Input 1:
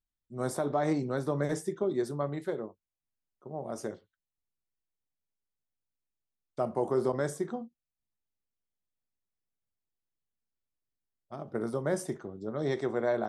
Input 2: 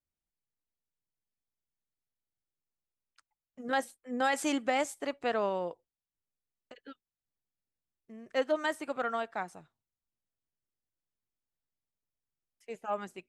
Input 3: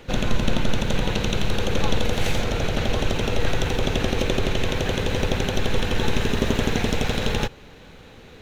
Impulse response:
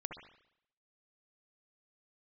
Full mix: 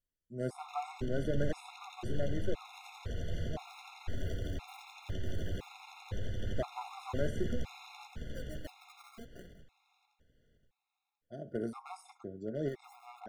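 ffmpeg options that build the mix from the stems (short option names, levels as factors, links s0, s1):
-filter_complex "[0:a]acrossover=split=3200[s0][s1];[s1]acompressor=threshold=0.00251:ratio=4:attack=1:release=60[s2];[s0][s2]amix=inputs=2:normalize=0,aeval=exprs='clip(val(0),-1,0.0376)':c=same,volume=0.708,asplit=2[s3][s4];[s4]volume=0.119[s5];[1:a]equalizer=f=690:t=o:w=1.9:g=-8.5,acompressor=threshold=0.0224:ratio=6,acrusher=samples=34:mix=1:aa=0.000001:lfo=1:lforange=34:lforate=0.58,volume=0.355,asplit=2[s6][s7];[2:a]acrossover=split=140|1400[s8][s9][s10];[s8]acompressor=threshold=0.1:ratio=4[s11];[s9]acompressor=threshold=0.0178:ratio=4[s12];[s10]acompressor=threshold=0.00794:ratio=4[s13];[s11][s12][s13]amix=inputs=3:normalize=0,adelay=600,volume=0.299,asplit=3[s14][s15][s16];[s15]volume=0.398[s17];[s16]volume=0.562[s18];[s7]apad=whole_len=586059[s19];[s3][s19]sidechaincompress=threshold=0.00112:ratio=8:attack=16:release=366[s20];[s6][s14]amix=inputs=2:normalize=0,alimiter=level_in=3.16:limit=0.0631:level=0:latency=1:release=12,volume=0.316,volume=1[s21];[3:a]atrim=start_sample=2205[s22];[s5][s17]amix=inputs=2:normalize=0[s23];[s23][s22]afir=irnorm=-1:irlink=0[s24];[s18]aecho=0:1:520|1040|1560|2080|2600|3120:1|0.43|0.185|0.0795|0.0342|0.0147[s25];[s20][s21][s24][s25]amix=inputs=4:normalize=0,afftfilt=real='re*gt(sin(2*PI*0.98*pts/sr)*(1-2*mod(floor(b*sr/1024/700),2)),0)':imag='im*gt(sin(2*PI*0.98*pts/sr)*(1-2*mod(floor(b*sr/1024/700),2)),0)':win_size=1024:overlap=0.75"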